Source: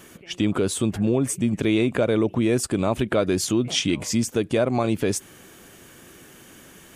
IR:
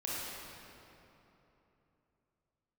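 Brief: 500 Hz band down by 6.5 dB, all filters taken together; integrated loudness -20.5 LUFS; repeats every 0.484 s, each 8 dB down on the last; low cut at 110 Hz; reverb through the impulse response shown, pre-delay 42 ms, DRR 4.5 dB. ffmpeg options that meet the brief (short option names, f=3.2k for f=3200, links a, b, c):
-filter_complex "[0:a]highpass=110,equalizer=f=500:t=o:g=-9,aecho=1:1:484|968|1452|1936|2420:0.398|0.159|0.0637|0.0255|0.0102,asplit=2[a][b];[1:a]atrim=start_sample=2205,adelay=42[c];[b][c]afir=irnorm=-1:irlink=0,volume=-8.5dB[d];[a][d]amix=inputs=2:normalize=0,volume=3.5dB"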